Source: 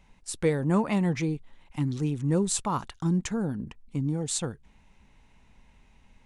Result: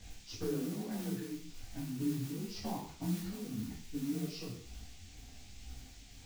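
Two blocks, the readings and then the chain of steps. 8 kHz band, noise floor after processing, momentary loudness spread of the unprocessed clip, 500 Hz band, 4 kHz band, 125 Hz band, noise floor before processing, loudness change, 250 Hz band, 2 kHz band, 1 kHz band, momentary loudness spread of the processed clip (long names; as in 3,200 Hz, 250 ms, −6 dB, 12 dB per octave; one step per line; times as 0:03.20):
−15.5 dB, −54 dBFS, 12 LU, −13.0 dB, −7.5 dB, −13.0 dB, −60 dBFS, −11.0 dB, −9.5 dB, −13.5 dB, −14.5 dB, 16 LU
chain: partials spread apart or drawn together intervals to 87%
tilt shelving filter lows +8 dB, about 880 Hz
brickwall limiter −14.5 dBFS, peak gain reduction 6.5 dB
downward compressor 6 to 1, threshold −37 dBFS, peak gain reduction 17.5 dB
amplitude tremolo 1.9 Hz, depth 50%
noise that follows the level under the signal 16 dB
reverb whose tail is shaped and stops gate 200 ms falling, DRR 0.5 dB
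noise in a band 2,000–7,600 Hz −61 dBFS
micro pitch shift up and down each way 43 cents
level +4.5 dB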